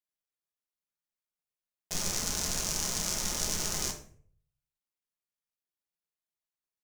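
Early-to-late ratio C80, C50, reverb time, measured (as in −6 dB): 13.5 dB, 10.0 dB, 0.50 s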